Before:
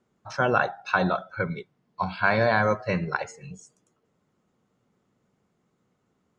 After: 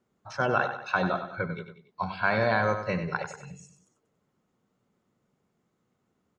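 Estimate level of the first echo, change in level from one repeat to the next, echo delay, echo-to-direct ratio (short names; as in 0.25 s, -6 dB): -9.5 dB, -6.5 dB, 95 ms, -8.5 dB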